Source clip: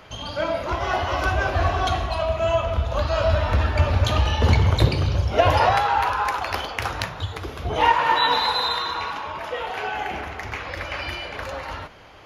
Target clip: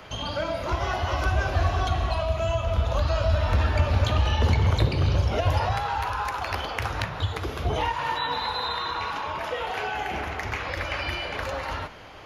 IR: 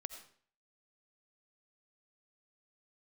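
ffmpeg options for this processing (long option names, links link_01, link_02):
-filter_complex "[0:a]asplit=2[link_01][link_02];[1:a]atrim=start_sample=2205,asetrate=29988,aresample=44100[link_03];[link_02][link_03]afir=irnorm=-1:irlink=0,volume=-10dB[link_04];[link_01][link_04]amix=inputs=2:normalize=0,acrossover=split=170|3800[link_05][link_06][link_07];[link_05]acompressor=threshold=-19dB:ratio=4[link_08];[link_06]acompressor=threshold=-27dB:ratio=4[link_09];[link_07]acompressor=threshold=-43dB:ratio=4[link_10];[link_08][link_09][link_10]amix=inputs=3:normalize=0"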